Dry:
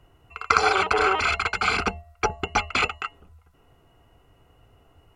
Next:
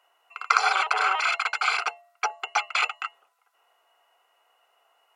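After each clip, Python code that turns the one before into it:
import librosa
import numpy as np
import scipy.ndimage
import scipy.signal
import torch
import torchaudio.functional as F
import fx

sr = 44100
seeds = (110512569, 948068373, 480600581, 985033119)

y = scipy.signal.sosfilt(scipy.signal.butter(4, 670.0, 'highpass', fs=sr, output='sos'), x)
y = F.gain(torch.from_numpy(y), -1.0).numpy()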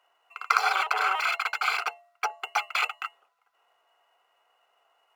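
y = scipy.signal.medfilt(x, 5)
y = F.gain(torch.from_numpy(y), -2.0).numpy()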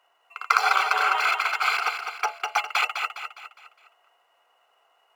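y = fx.echo_feedback(x, sr, ms=205, feedback_pct=44, wet_db=-7)
y = F.gain(torch.from_numpy(y), 2.5).numpy()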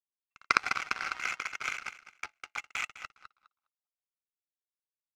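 y = fx.filter_sweep_bandpass(x, sr, from_hz=2000.0, to_hz=410.0, start_s=2.96, end_s=4.54, q=2.6)
y = fx.power_curve(y, sr, exponent=2.0)
y = F.gain(torch.from_numpy(y), 7.0).numpy()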